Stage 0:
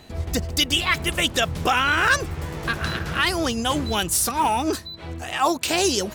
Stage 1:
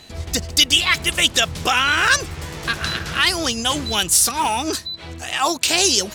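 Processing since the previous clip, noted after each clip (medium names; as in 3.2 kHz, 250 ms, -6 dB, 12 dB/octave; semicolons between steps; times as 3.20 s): peaking EQ 5.6 kHz +10 dB 2.9 oct; trim -1.5 dB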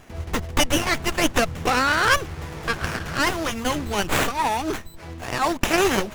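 sliding maximum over 9 samples; trim -2 dB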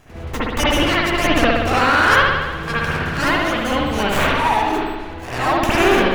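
spring tank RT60 1.3 s, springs 58 ms, chirp 25 ms, DRR -8.5 dB; trim -3 dB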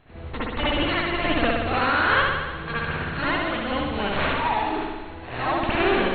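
brick-wall FIR low-pass 4.4 kHz; trim -6.5 dB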